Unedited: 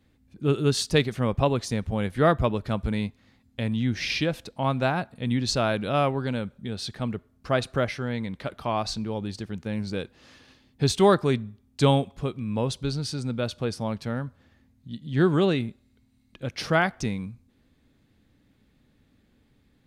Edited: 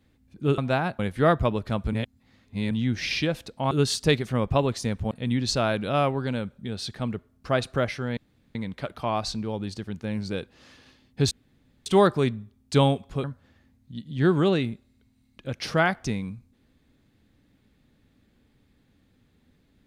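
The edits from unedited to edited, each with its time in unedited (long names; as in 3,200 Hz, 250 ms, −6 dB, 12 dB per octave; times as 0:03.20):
0:00.58–0:01.98: swap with 0:04.70–0:05.11
0:02.92–0:03.70: reverse
0:08.17: splice in room tone 0.38 s
0:10.93: splice in room tone 0.55 s
0:12.31–0:14.20: remove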